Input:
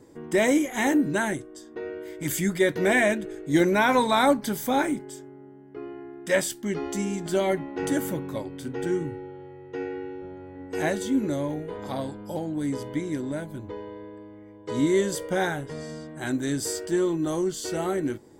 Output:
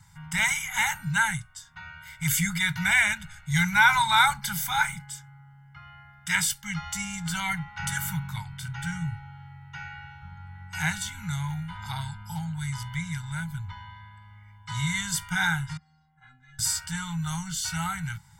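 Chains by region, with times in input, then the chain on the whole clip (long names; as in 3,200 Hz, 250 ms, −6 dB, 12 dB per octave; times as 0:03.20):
0:15.77–0:16.59: head-to-tape spacing loss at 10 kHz 38 dB + stiff-string resonator 250 Hz, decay 0.31 s, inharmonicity 0.008
whole clip: Chebyshev band-stop filter 170–920 Hz, order 4; comb filter 1.4 ms, depth 64%; level +4 dB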